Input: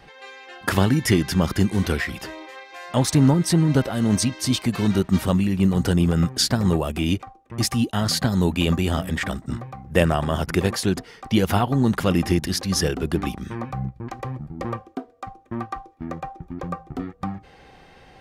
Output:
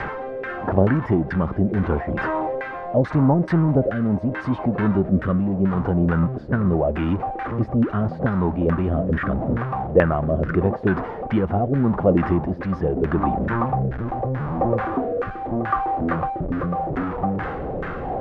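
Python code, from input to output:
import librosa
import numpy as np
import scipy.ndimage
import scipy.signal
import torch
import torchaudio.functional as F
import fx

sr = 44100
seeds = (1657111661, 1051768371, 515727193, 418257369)

p1 = x + 0.5 * 10.0 ** (-22.5 / 20.0) * np.sign(x)
p2 = fx.rotary(p1, sr, hz=0.8)
p3 = fx.rider(p2, sr, range_db=4, speed_s=0.5)
p4 = p2 + (p3 * 10.0 ** (-1.0 / 20.0))
p5 = fx.dynamic_eq(p4, sr, hz=6400.0, q=0.7, threshold_db=-34.0, ratio=4.0, max_db=-5)
p6 = fx.filter_lfo_lowpass(p5, sr, shape='saw_down', hz=2.3, low_hz=490.0, high_hz=1700.0, q=3.0)
y = p6 * 10.0 ** (-6.0 / 20.0)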